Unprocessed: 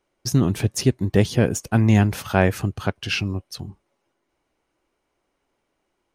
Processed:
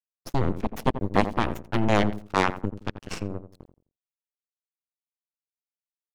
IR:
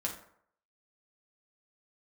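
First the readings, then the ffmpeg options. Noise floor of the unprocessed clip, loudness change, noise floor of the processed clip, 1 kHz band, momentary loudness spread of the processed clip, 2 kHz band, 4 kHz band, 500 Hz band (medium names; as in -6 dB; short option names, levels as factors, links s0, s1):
-75 dBFS, -6.0 dB, under -85 dBFS, +3.0 dB, 12 LU, -4.0 dB, -7.0 dB, -4.0 dB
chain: -filter_complex "[0:a]aeval=exprs='sgn(val(0))*max(abs(val(0))-0.0316,0)':c=same,aeval=exprs='0.708*(cos(1*acos(clip(val(0)/0.708,-1,1)))-cos(1*PI/2))+0.282*(cos(3*acos(clip(val(0)/0.708,-1,1)))-cos(3*PI/2))+0.0891*(cos(8*acos(clip(val(0)/0.708,-1,1)))-cos(8*PI/2))':c=same,highshelf=f=4500:g=-8.5,asplit=2[s0][s1];[s1]adelay=86,lowpass=f=990:p=1,volume=0.316,asplit=2[s2][s3];[s3]adelay=86,lowpass=f=990:p=1,volume=0.29,asplit=2[s4][s5];[s5]adelay=86,lowpass=f=990:p=1,volume=0.29[s6];[s2][s4][s6]amix=inputs=3:normalize=0[s7];[s0][s7]amix=inputs=2:normalize=0,volume=1.12"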